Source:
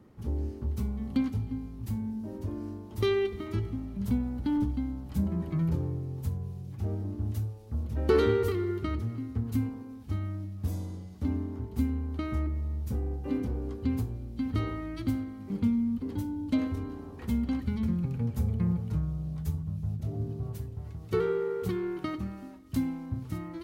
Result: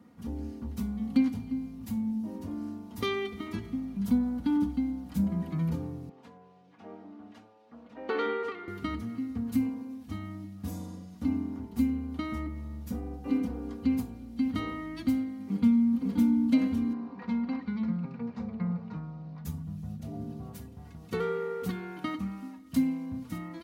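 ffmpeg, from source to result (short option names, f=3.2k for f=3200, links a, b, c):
-filter_complex "[0:a]asettb=1/sr,asplit=3[a][b][c];[a]atrim=end=6.094[d];[b]atrim=start=6.09:end=8.68,asetpts=PTS-STARTPTS,afade=t=in:d=0.004:c=qsin,afade=t=out:st=2.586:d=0.004:c=qsin,highpass=450,lowpass=2.7k[e];[c]atrim=start=8.676[f];[d][e]acrossfade=d=0.004:c1=hsin:c2=qsin[g];[g][f]acrossfade=d=0.004:c1=qsin:c2=hsin,asplit=2[h][i];[i]afade=t=in:st=15.37:d=0.01,afade=t=out:st=16.05:d=0.01,aecho=0:1:550|1100|1650|2200|2750|3300|3850:0.749894|0.374947|0.187474|0.0937368|0.0468684|0.0234342|0.0117171[j];[h][j]amix=inputs=2:normalize=0,asettb=1/sr,asplit=3[k][l][m];[k]atrim=end=16.934[n];[l]atrim=start=16.93:end=19.45,asetpts=PTS-STARTPTS,afade=t=in:d=0.004:c=qsin,afade=t=out:st=2.516:d=0.004:c=qsin,highpass=170,equalizer=f=260:t=q:w=4:g=-6,equalizer=f=1k:t=q:w=4:g=6,equalizer=f=3.2k:t=q:w=4:g=-10,lowpass=f=4.2k:w=0.5412,lowpass=f=4.2k:w=1.3066[o];[m]atrim=start=19.446[p];[n][o]acrossfade=d=0.004:c1=hsin:c2=qsin[q];[q][p]acrossfade=d=0.004:c1=qsin:c2=hsin,highpass=110,equalizer=f=430:t=o:w=0.23:g=-10,aecho=1:1:4.2:0.7"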